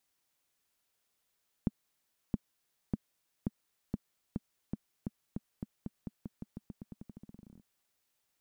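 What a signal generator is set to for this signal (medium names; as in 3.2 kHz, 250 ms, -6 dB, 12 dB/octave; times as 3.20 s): bouncing ball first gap 0.67 s, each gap 0.89, 210 Hz, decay 32 ms -17 dBFS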